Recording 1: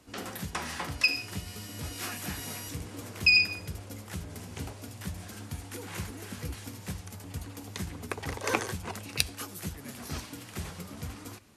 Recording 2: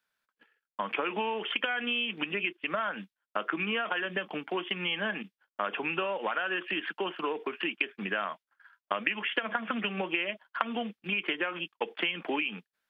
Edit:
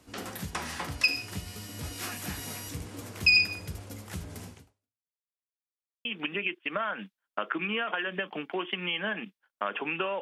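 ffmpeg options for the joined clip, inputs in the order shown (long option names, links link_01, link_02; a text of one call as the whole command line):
ffmpeg -i cue0.wav -i cue1.wav -filter_complex "[0:a]apad=whole_dur=10.21,atrim=end=10.21,asplit=2[link_01][link_02];[link_01]atrim=end=5.24,asetpts=PTS-STARTPTS,afade=type=out:start_time=4.48:duration=0.76:curve=exp[link_03];[link_02]atrim=start=5.24:end=6.05,asetpts=PTS-STARTPTS,volume=0[link_04];[1:a]atrim=start=2.03:end=6.19,asetpts=PTS-STARTPTS,afade=type=in:duration=0.004:curve=hsin[link_05];[link_03][link_04][link_05]concat=n=3:v=0:a=1" out.wav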